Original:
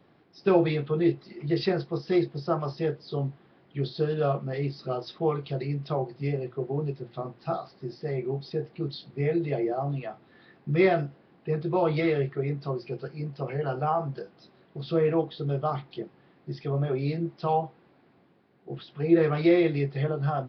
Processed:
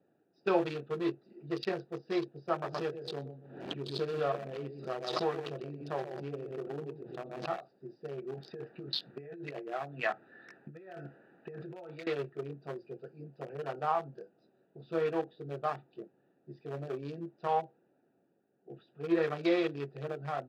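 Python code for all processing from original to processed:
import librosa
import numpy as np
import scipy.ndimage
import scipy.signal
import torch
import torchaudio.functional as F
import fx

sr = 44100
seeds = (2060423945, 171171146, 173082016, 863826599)

y = fx.chain(x, sr, fx.lowpass(hz=4700.0, slope=12),
    fx.echo_feedback(ms=123, feedback_pct=18, wet_db=-8.0),
    fx.pre_swell(db_per_s=41.0), at=(2.51, 7.55))
y = fx.chain(y, sr, fx.over_compress(threshold_db=-34.0, ratio=-1.0),
    fx.peak_eq(hz=1700.0, db=12.5, octaves=1.4), at=(8.34, 12.07))
y = fx.wiener(y, sr, points=41)
y = fx.highpass(y, sr, hz=950.0, slope=6)
y = fx.notch(y, sr, hz=2100.0, q=11.0)
y = F.gain(torch.from_numpy(y), 1.0).numpy()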